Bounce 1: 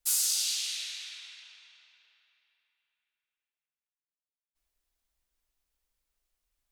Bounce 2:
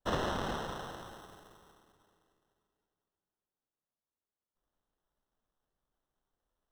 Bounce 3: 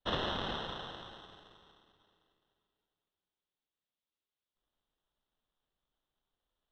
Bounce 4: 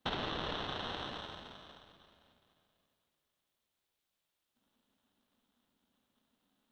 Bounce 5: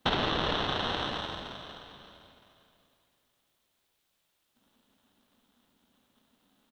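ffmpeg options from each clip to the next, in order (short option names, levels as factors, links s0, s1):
-filter_complex "[0:a]acrusher=samples=19:mix=1:aa=0.000001,acrossover=split=5900[s0][s1];[s1]acompressor=threshold=0.00251:ratio=4:attack=1:release=60[s2];[s0][s2]amix=inputs=2:normalize=0,volume=0.562"
-af "lowpass=f=3500:t=q:w=3.3,volume=0.708"
-af "acompressor=threshold=0.00708:ratio=6,aeval=exprs='val(0)*sin(2*PI*240*n/s)':c=same,volume=3.55"
-af "aecho=1:1:914:0.0891,volume=2.82"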